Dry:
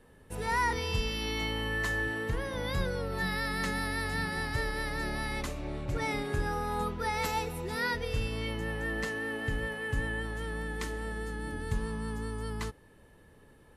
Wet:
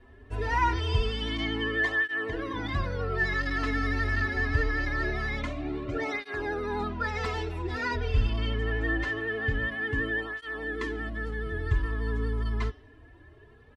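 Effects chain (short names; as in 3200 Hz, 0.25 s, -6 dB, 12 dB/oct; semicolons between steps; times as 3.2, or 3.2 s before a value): tracing distortion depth 0.055 ms; LPF 3400 Hz 12 dB/oct; low shelf 140 Hz +3.5 dB; comb 2.9 ms, depth 73%; de-hum 181.2 Hz, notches 34; vibrato 12 Hz 33 cents; tape flanging out of phase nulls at 0.24 Hz, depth 6.8 ms; gain +4.5 dB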